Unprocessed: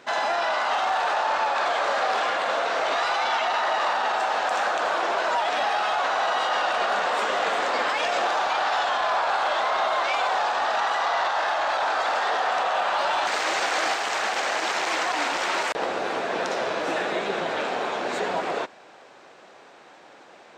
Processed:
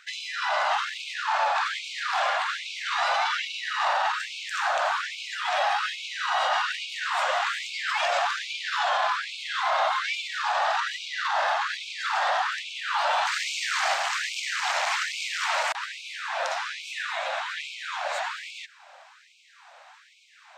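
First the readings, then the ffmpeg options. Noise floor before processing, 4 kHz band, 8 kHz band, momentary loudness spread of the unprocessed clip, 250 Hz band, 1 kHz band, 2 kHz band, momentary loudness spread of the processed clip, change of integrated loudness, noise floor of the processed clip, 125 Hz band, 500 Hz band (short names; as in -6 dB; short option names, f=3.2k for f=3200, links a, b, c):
-49 dBFS, 0.0 dB, 0.0 dB, 3 LU, under -40 dB, -4.0 dB, -1.5 dB, 7 LU, -2.5 dB, -54 dBFS, n/a, -7.5 dB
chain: -af "afftfilt=real='re*gte(b*sr/1024,510*pow(2200/510,0.5+0.5*sin(2*PI*1.2*pts/sr)))':imag='im*gte(b*sr/1024,510*pow(2200/510,0.5+0.5*sin(2*PI*1.2*pts/sr)))':win_size=1024:overlap=0.75"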